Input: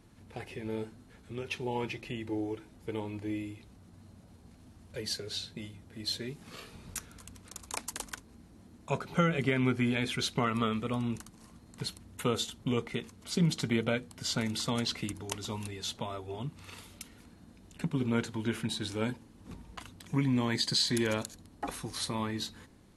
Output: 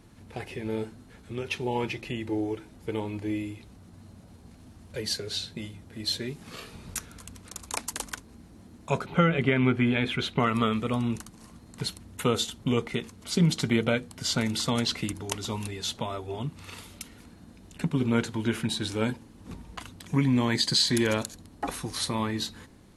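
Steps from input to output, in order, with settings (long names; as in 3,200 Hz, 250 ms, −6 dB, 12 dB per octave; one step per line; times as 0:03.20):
0:09.06–0:10.40: flat-topped bell 7,400 Hz −12.5 dB
level +5 dB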